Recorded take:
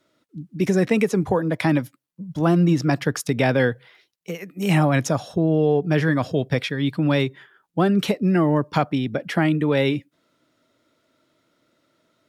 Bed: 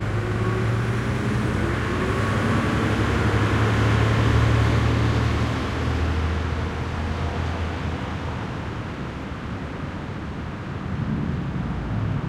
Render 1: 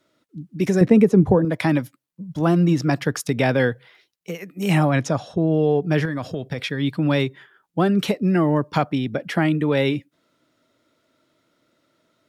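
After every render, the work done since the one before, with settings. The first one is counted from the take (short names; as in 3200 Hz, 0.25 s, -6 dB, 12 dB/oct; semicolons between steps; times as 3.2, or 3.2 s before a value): 0.81–1.45 tilt shelf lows +8.5 dB, about 790 Hz; 4.91–5.51 air absorption 54 m; 6.05–6.59 compressor, threshold -22 dBFS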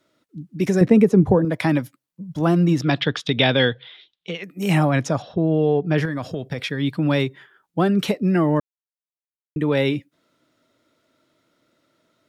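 2.82–4.44 synth low-pass 3500 Hz, resonance Q 7.6; 5.22–5.98 steep low-pass 4800 Hz; 8.6–9.56 mute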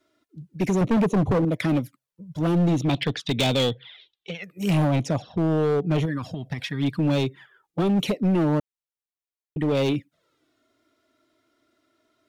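envelope flanger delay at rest 2.9 ms, full sweep at -16.5 dBFS; overloaded stage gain 17.5 dB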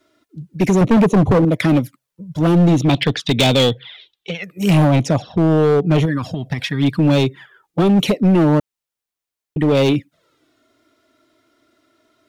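gain +8 dB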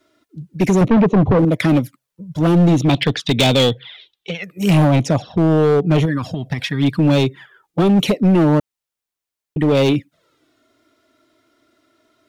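0.88–1.39 air absorption 220 m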